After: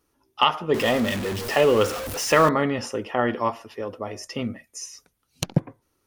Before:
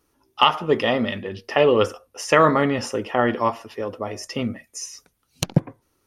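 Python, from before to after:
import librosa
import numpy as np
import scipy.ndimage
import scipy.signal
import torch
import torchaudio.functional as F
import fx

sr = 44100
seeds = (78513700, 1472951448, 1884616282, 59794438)

y = fx.zero_step(x, sr, step_db=-22.5, at=(0.74, 2.49))
y = y * 10.0 ** (-3.0 / 20.0)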